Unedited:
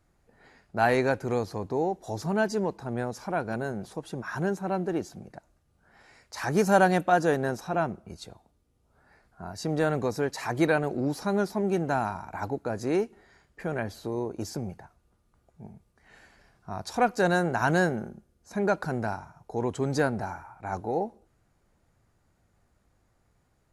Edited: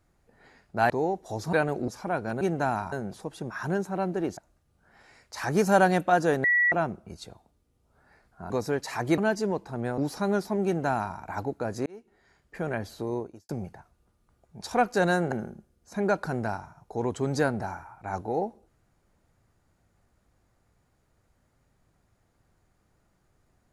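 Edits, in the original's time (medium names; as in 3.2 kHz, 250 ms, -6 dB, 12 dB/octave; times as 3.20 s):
0.90–1.68 s: delete
2.31–3.11 s: swap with 10.68–11.03 s
5.09–5.37 s: delete
7.44–7.72 s: bleep 1.94 kHz -19 dBFS
9.50–10.00 s: delete
11.70–12.21 s: copy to 3.64 s
12.91–13.63 s: fade in
14.24–14.54 s: fade out quadratic
15.66–16.84 s: delete
17.55–17.91 s: delete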